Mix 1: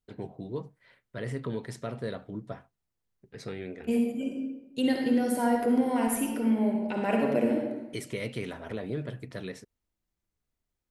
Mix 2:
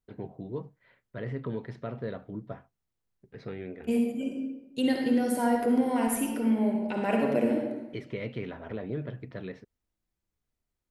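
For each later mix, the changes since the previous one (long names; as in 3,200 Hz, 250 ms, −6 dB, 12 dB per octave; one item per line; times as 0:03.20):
first voice: add high-frequency loss of the air 300 metres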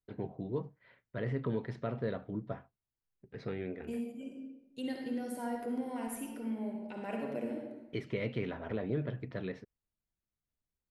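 second voice −12.0 dB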